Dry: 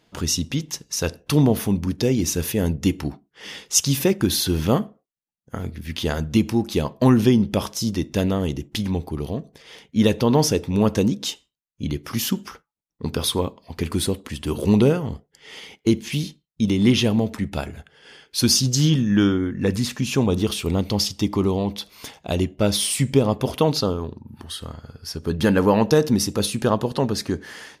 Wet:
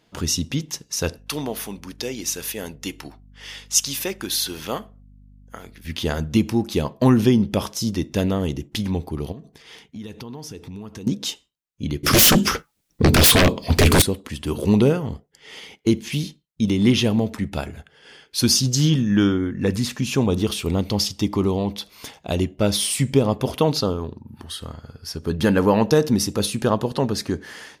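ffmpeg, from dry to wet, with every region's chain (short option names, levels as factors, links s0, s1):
-filter_complex "[0:a]asettb=1/sr,asplit=3[s0][s1][s2];[s0]atrim=end=1.184[s3];[s1]atrim=start=1.18:end=5.85,asetpts=PTS-STARTPTS,afade=t=in:d=0.004:c=qsin,afade=t=out:st=4.666:d=0.004:c=qsin,highpass=f=1000:p=1,aeval=exprs='val(0)+0.00447*(sin(2*PI*50*n/s)+sin(2*PI*2*50*n/s)/2+sin(2*PI*3*50*n/s)/3+sin(2*PI*4*50*n/s)/4+sin(2*PI*5*50*n/s)/5)':c=same[s4];[s2]atrim=start=5.846[s5];[s3][s4]acrossfade=d=0.004:c1=hsin:c2=qsin[s6];[s6][s5]acrossfade=d=0.004:c1=qsin:c2=hsin,asettb=1/sr,asplit=3[s7][s8][s9];[s7]atrim=end=9.324[s10];[s8]atrim=start=9.32:end=11.07,asetpts=PTS-STARTPTS,afade=t=in:d=0.004:c=qsin,afade=t=out:st=1.746:d=0.004:c=qsin,equalizer=f=560:t=o:w=0.26:g=-11,acompressor=threshold=0.02:ratio=5:attack=3.2:release=140:knee=1:detection=peak[s11];[s9]atrim=start=11.066[s12];[s10][s11]acrossfade=d=0.004:c1=hsin:c2=qsin[s13];[s13][s12]acrossfade=d=0.004:c1=qsin:c2=hsin,asettb=1/sr,asplit=3[s14][s15][s16];[s14]atrim=end=12.034[s17];[s15]atrim=start=12.03:end=14.02,asetpts=PTS-STARTPTS,afade=t=in:d=0.004:c=qsin,afade=t=out:st=1.986:d=0.004:c=qsin,aeval=exprs='0.376*sin(PI/2*7.08*val(0)/0.376)':c=same,equalizer=f=950:w=1.2:g=-7[s18];[s16]atrim=start=14.016[s19];[s17][s18]acrossfade=d=0.004:c1=hsin:c2=qsin[s20];[s20][s19]acrossfade=d=0.004:c1=qsin:c2=hsin"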